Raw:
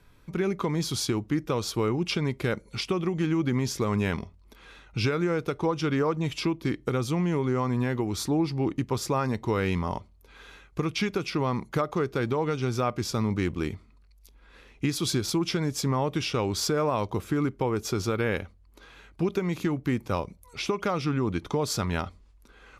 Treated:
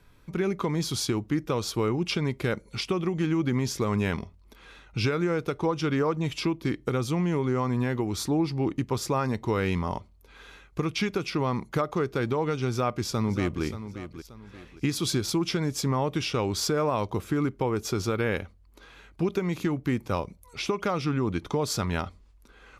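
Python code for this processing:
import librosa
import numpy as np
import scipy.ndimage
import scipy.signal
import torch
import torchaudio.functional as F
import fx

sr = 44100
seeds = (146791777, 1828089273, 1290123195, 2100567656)

y = fx.echo_throw(x, sr, start_s=12.69, length_s=0.94, ms=580, feedback_pct=35, wet_db=-11.5)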